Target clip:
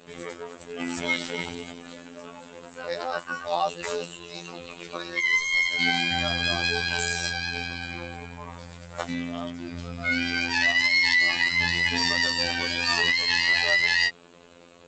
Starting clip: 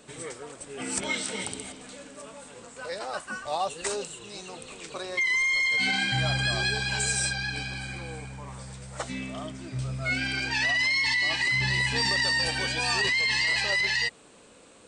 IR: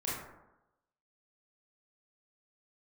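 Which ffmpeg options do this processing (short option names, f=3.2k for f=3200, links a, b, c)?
-af "afftfilt=real='hypot(re,im)*cos(PI*b)':imag='0':win_size=2048:overlap=0.75,volume=6.5dB" -ar 16000 -c:a g722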